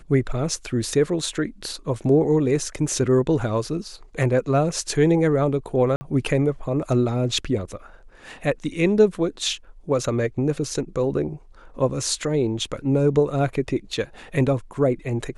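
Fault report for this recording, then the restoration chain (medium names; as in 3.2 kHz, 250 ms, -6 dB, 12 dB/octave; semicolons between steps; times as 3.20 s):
5.96–6.01 s: dropout 50 ms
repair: interpolate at 5.96 s, 50 ms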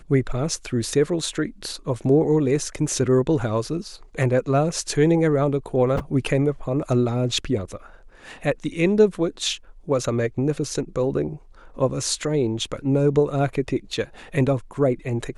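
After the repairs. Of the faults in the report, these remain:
nothing left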